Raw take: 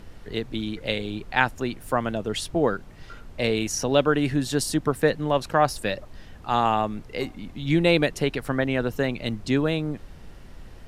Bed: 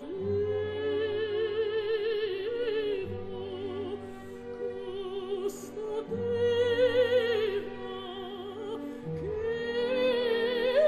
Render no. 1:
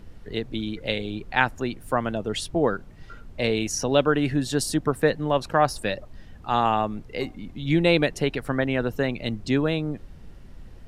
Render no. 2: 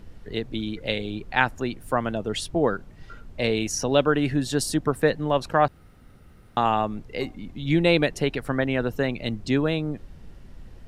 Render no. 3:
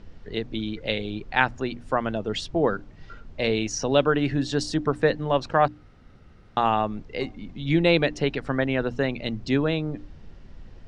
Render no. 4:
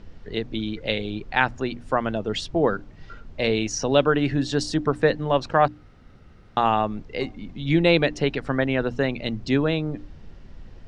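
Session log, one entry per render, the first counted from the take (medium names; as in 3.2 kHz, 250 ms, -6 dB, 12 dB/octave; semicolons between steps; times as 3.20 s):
noise reduction 6 dB, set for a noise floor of -45 dBFS
5.68–6.57 s: room tone
low-pass 6.3 kHz 24 dB/octave; hum notches 60/120/180/240/300 Hz
trim +1.5 dB; peak limiter -3 dBFS, peak gain reduction 1.5 dB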